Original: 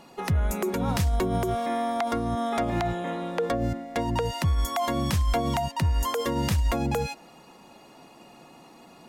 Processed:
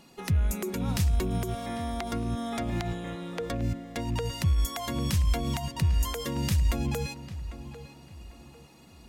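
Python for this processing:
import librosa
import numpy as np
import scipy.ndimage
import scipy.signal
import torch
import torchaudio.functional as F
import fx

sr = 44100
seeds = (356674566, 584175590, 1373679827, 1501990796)

y = fx.rattle_buzz(x, sr, strikes_db=-29.0, level_db=-40.0)
y = fx.peak_eq(y, sr, hz=790.0, db=-10.0, octaves=2.5)
y = fx.echo_filtered(y, sr, ms=798, feedback_pct=35, hz=2600.0, wet_db=-13.0)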